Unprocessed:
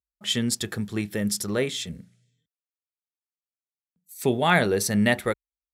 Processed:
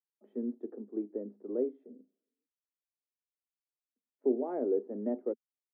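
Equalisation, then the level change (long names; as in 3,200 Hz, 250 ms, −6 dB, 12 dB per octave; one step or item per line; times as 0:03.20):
Butterworth high-pass 240 Hz 72 dB per octave
transistor ladder low-pass 560 Hz, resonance 25%
0.0 dB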